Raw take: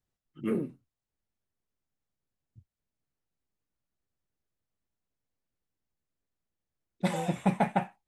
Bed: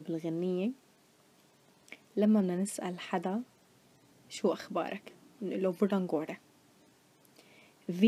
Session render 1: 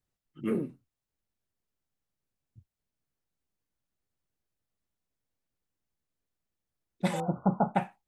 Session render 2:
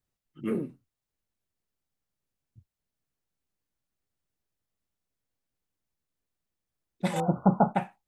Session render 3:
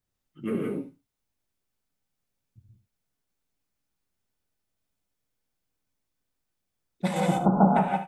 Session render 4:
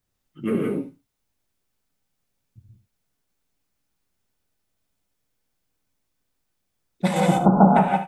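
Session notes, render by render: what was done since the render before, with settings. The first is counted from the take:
7.20–7.75 s: brick-wall FIR low-pass 1.5 kHz
7.16–7.73 s: gain +4.5 dB
on a send: delay 74 ms -12 dB; on the sum: gated-style reverb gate 200 ms rising, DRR -1 dB
trim +5.5 dB; peak limiter -2 dBFS, peak gain reduction 1 dB

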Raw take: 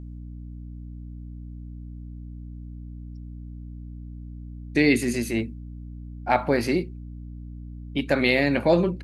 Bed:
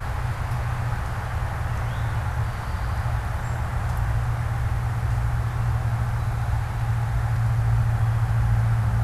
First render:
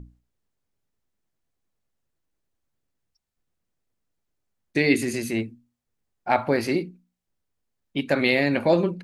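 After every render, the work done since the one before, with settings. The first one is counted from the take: hum notches 60/120/180/240/300 Hz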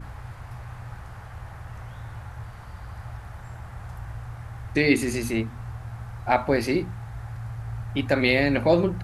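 add bed -12.5 dB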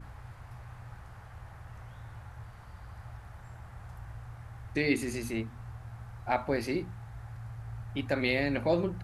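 trim -8 dB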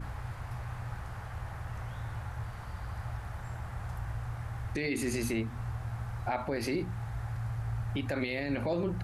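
in parallel at +2.5 dB: compression, threshold -37 dBFS, peak gain reduction 14.5 dB; on the sum: peak limiter -22.5 dBFS, peak gain reduction 11 dB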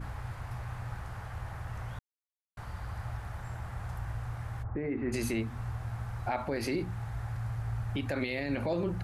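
1.99–2.57 s: mute; 4.62–5.12 s: low-pass 1.2 kHz -> 2 kHz 24 dB/octave

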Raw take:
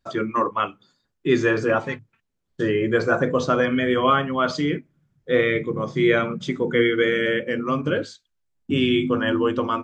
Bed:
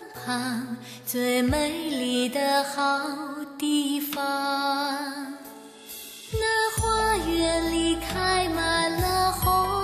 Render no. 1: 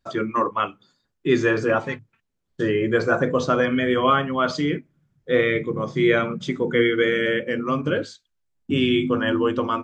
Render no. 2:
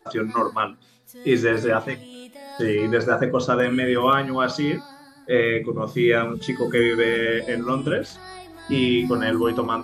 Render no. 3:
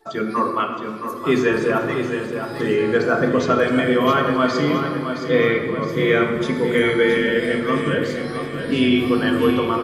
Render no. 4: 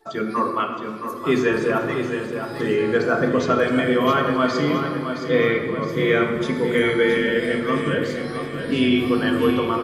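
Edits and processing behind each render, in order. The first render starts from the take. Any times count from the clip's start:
no audible change
add bed -16.5 dB
on a send: feedback delay 668 ms, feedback 49%, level -8 dB; on the sum: simulated room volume 3900 m³, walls mixed, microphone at 1.6 m
trim -1.5 dB

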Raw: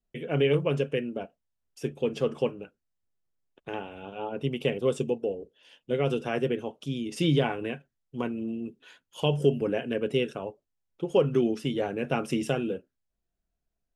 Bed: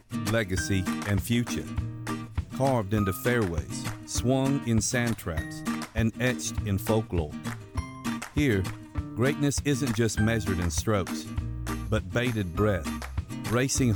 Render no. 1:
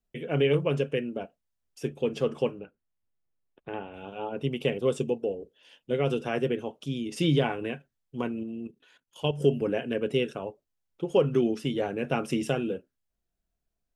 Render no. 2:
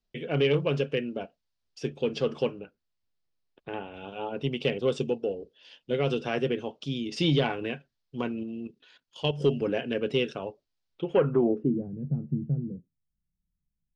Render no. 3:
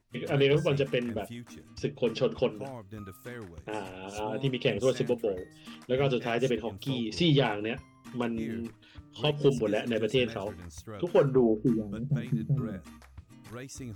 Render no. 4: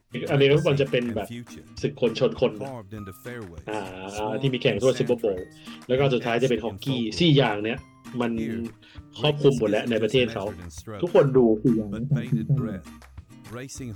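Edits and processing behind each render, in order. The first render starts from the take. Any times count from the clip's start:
2.59–3.94 s: distance through air 270 m; 8.43–9.41 s: level held to a coarse grid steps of 12 dB
saturation -12 dBFS, distortion -25 dB; low-pass sweep 4.7 kHz -> 160 Hz, 10.92–11.90 s
add bed -17 dB
trim +5.5 dB

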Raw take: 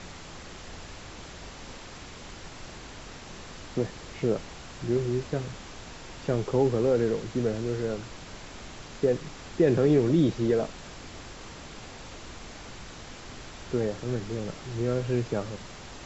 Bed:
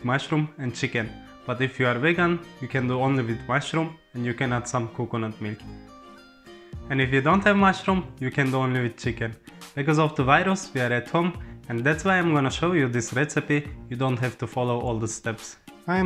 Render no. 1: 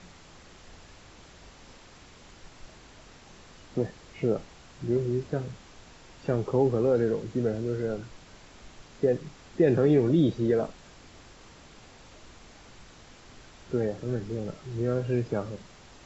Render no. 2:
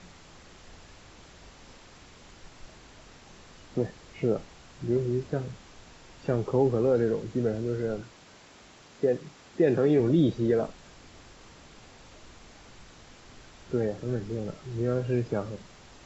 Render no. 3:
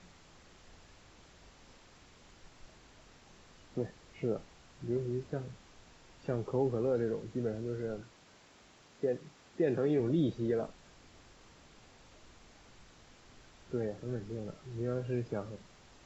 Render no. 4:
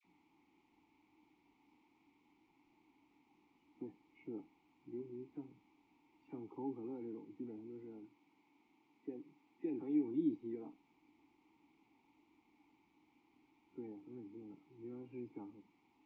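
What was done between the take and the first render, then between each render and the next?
noise print and reduce 8 dB
8.02–10.00 s: high-pass 170 Hz 6 dB/octave
trim -7.5 dB
vowel filter u; phase dispersion lows, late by 45 ms, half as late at 1.3 kHz

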